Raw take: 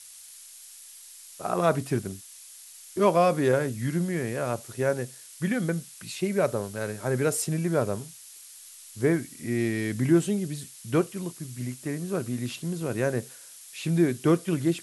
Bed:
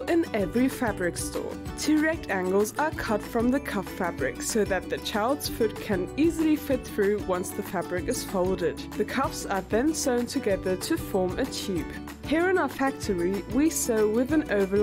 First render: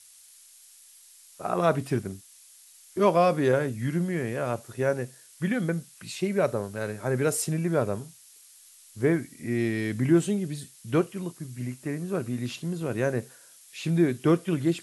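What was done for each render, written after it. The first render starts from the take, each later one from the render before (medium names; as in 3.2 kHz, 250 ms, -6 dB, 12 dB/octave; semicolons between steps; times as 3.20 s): noise print and reduce 6 dB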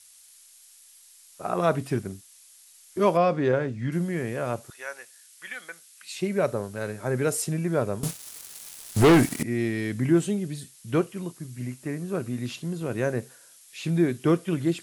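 3.17–3.92 s: distance through air 120 m; 4.70–6.16 s: high-pass 1.3 kHz; 8.03–9.43 s: waveshaping leveller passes 5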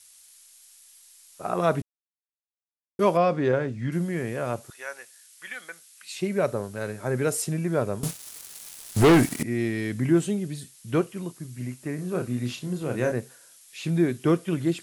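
1.82–2.99 s: mute; 11.95–13.12 s: doubling 33 ms -5.5 dB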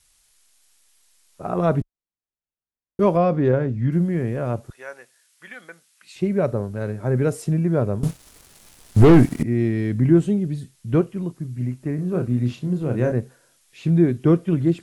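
tilt EQ -3 dB/octave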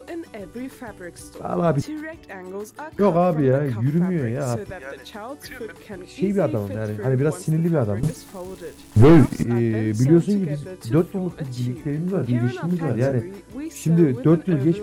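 add bed -9 dB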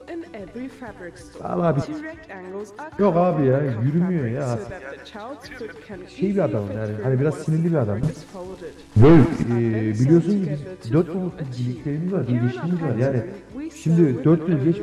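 distance through air 66 m; thinning echo 134 ms, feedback 41%, high-pass 520 Hz, level -9.5 dB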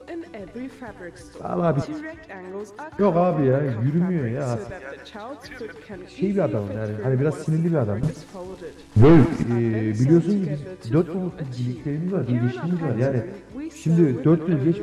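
trim -1 dB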